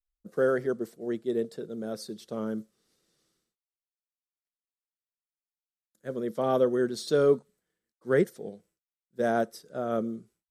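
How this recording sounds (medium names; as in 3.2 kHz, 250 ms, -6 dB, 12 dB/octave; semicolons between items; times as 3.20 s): noise floor -97 dBFS; spectral tilt -5.5 dB/octave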